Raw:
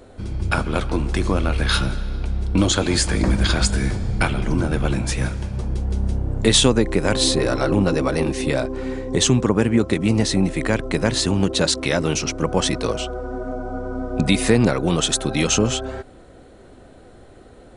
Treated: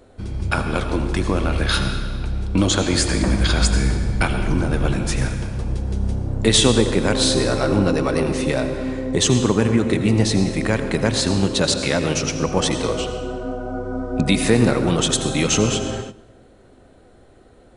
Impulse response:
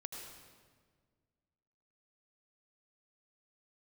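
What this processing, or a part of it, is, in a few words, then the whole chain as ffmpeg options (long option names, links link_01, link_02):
keyed gated reverb: -filter_complex "[0:a]asplit=3[link_01][link_02][link_03];[1:a]atrim=start_sample=2205[link_04];[link_02][link_04]afir=irnorm=-1:irlink=0[link_05];[link_03]apad=whole_len=783498[link_06];[link_05][link_06]sidechaingate=range=-14dB:threshold=-39dB:ratio=16:detection=peak,volume=4.5dB[link_07];[link_01][link_07]amix=inputs=2:normalize=0,volume=-6dB"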